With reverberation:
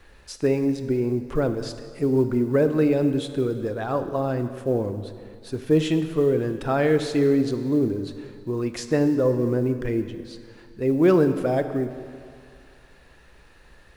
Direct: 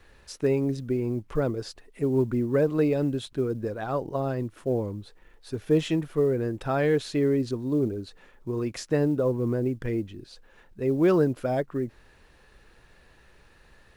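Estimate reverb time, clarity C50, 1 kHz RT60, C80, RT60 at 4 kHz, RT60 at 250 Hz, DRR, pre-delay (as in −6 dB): 2.4 s, 10.0 dB, 2.4 s, 11.0 dB, 2.0 s, 2.1 s, 8.5 dB, 3 ms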